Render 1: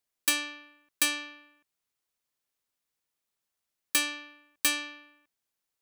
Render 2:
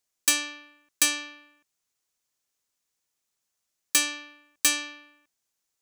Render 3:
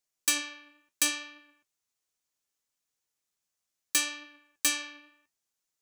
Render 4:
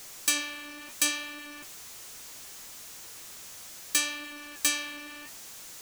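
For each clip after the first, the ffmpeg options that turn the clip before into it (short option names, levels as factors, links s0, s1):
-af "equalizer=f=6600:t=o:w=0.83:g=7.5,volume=1.19"
-af "flanger=delay=6.1:depth=8:regen=61:speed=0.7:shape=triangular"
-af "aeval=exprs='val(0)+0.5*0.0119*sgn(val(0))':c=same"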